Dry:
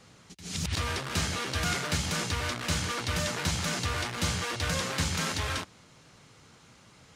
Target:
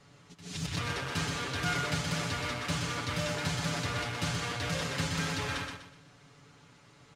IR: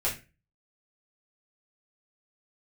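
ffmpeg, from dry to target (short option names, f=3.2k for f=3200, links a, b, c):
-af "highshelf=f=5k:g=-7.5,aecho=1:1:7:0.72,aecho=1:1:124|248|372|496:0.562|0.186|0.0612|0.0202,volume=-4dB"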